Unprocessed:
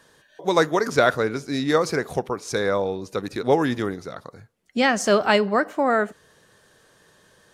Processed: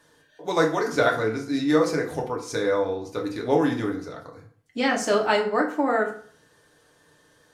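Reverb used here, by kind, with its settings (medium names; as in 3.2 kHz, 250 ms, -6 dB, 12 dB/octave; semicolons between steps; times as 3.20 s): FDN reverb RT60 0.5 s, low-frequency decay 1×, high-frequency decay 0.7×, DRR -0.5 dB; trim -6 dB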